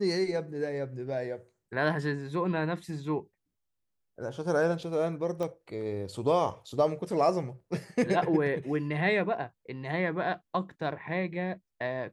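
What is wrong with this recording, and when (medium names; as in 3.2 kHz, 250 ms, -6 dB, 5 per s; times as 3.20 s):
5.43 s: pop -22 dBFS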